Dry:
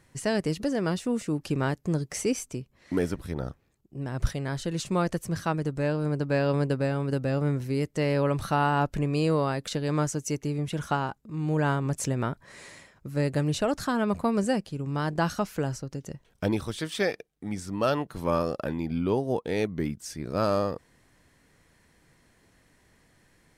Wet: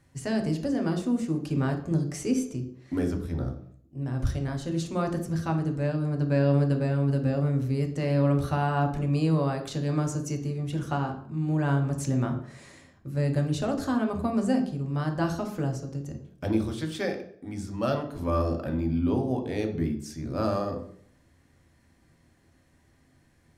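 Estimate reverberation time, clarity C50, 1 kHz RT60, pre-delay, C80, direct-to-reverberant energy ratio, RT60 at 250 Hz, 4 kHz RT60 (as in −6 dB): 0.60 s, 9.0 dB, 0.55 s, 3 ms, 12.5 dB, 3.0 dB, 0.60 s, 0.50 s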